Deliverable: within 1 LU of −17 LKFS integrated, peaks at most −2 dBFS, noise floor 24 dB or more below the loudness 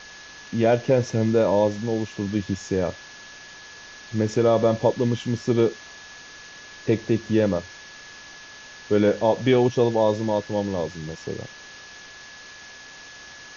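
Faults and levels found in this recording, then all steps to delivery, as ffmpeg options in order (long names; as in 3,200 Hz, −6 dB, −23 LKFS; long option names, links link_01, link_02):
interfering tone 1,700 Hz; level of the tone −44 dBFS; background noise floor −44 dBFS; target noise floor −47 dBFS; integrated loudness −23.0 LKFS; sample peak −7.0 dBFS; target loudness −17.0 LKFS
→ -af "bandreject=frequency=1700:width=30"
-af "afftdn=noise_reduction=6:noise_floor=-44"
-af "volume=6dB,alimiter=limit=-2dB:level=0:latency=1"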